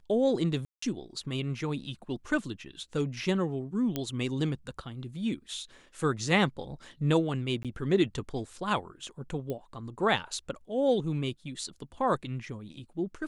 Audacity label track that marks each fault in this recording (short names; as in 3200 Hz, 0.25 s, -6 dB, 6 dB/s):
0.650000	0.820000	gap 0.174 s
3.960000	3.960000	pop -16 dBFS
7.630000	7.650000	gap 17 ms
9.500000	9.500000	pop -23 dBFS